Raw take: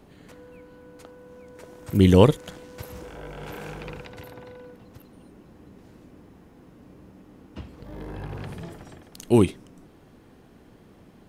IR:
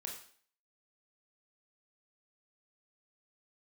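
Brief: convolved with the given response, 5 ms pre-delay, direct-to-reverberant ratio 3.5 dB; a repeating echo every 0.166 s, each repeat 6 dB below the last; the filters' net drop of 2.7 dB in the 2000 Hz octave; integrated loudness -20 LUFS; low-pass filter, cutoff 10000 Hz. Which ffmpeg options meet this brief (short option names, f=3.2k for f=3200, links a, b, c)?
-filter_complex "[0:a]lowpass=10k,equalizer=f=2k:t=o:g=-3.5,aecho=1:1:166|332|498|664|830|996:0.501|0.251|0.125|0.0626|0.0313|0.0157,asplit=2[a][b];[1:a]atrim=start_sample=2205,adelay=5[c];[b][c]afir=irnorm=-1:irlink=0,volume=-1.5dB[d];[a][d]amix=inputs=2:normalize=0,volume=-1.5dB"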